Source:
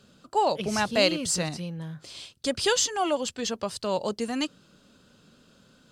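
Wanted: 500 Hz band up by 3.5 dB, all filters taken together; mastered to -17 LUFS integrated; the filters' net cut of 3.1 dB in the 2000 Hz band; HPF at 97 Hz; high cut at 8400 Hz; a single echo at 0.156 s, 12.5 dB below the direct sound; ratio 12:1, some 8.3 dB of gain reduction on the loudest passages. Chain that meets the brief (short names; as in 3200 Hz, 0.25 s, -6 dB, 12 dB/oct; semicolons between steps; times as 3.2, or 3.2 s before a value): HPF 97 Hz; LPF 8400 Hz; bell 500 Hz +4.5 dB; bell 2000 Hz -4.5 dB; compressor 12:1, threshold -25 dBFS; echo 0.156 s -12.5 dB; gain +14 dB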